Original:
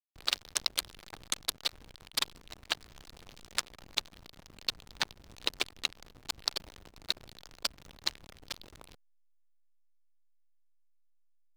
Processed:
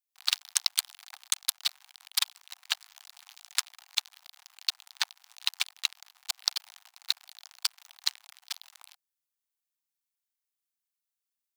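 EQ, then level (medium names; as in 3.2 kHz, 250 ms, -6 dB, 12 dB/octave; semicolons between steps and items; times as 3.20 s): steep high-pass 730 Hz 72 dB/octave; tilt EQ +2.5 dB/octave; -1.5 dB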